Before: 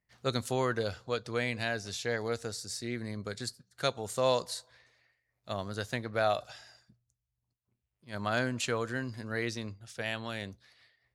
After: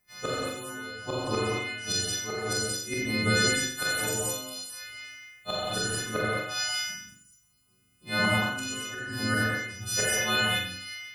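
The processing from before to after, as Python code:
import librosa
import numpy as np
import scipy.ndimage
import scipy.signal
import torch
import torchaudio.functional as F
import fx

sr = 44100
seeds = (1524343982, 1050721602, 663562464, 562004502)

p1 = fx.freq_snap(x, sr, grid_st=3)
p2 = fx.gate_flip(p1, sr, shuts_db=-24.0, range_db=-24)
p3 = p2 + fx.room_flutter(p2, sr, wall_m=7.3, rt60_s=0.56, dry=0)
p4 = fx.rev_gated(p3, sr, seeds[0], gate_ms=260, shape='flat', drr_db=-6.0)
y = p4 * librosa.db_to_amplitude(6.5)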